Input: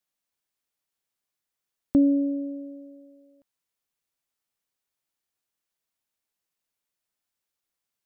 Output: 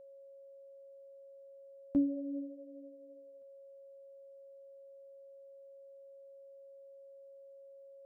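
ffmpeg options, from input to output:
-af "flanger=delay=7.3:depth=4.5:regen=25:speed=0.84:shape=triangular,bandreject=f=50:t=h:w=6,bandreject=f=100:t=h:w=6,aeval=exprs='val(0)+0.00631*sin(2*PI*550*n/s)':c=same,volume=0.398"

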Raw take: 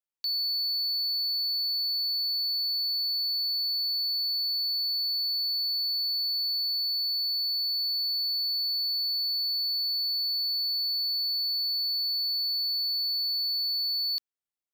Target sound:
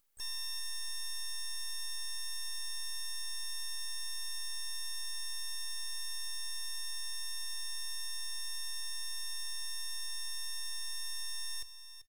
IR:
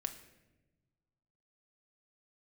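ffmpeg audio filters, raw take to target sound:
-filter_complex "[0:a]aecho=1:1:2.9:0.84,acrossover=split=8000[s0][s1];[s1]acompressor=mode=upward:threshold=0.00251:ratio=2.5[s2];[s0][s2]amix=inputs=2:normalize=0,alimiter=level_in=2.51:limit=0.0631:level=0:latency=1,volume=0.398,asplit=4[s3][s4][s5][s6];[s4]asetrate=29433,aresample=44100,atempo=1.49831,volume=0.398[s7];[s5]asetrate=52444,aresample=44100,atempo=0.840896,volume=0.2[s8];[s6]asetrate=66075,aresample=44100,atempo=0.66742,volume=0.224[s9];[s3][s7][s8][s9]amix=inputs=4:normalize=0,aeval=exprs='max(val(0),0)':c=same,asetrate=53802,aresample=44100,aecho=1:1:389:0.251,asplit=2[s10][s11];[1:a]atrim=start_sample=2205[s12];[s11][s12]afir=irnorm=-1:irlink=0,volume=0.473[s13];[s10][s13]amix=inputs=2:normalize=0,volume=0.562"

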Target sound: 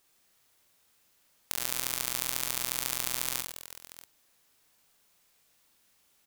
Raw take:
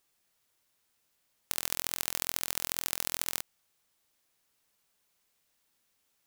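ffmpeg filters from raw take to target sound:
-filter_complex "[0:a]aecho=1:1:40|104|206.4|370.2|632.4:0.631|0.398|0.251|0.158|0.1,asplit=2[s0][s1];[s1]acompressor=threshold=0.00794:ratio=6,volume=1.26[s2];[s0][s2]amix=inputs=2:normalize=0,volume=0.794"

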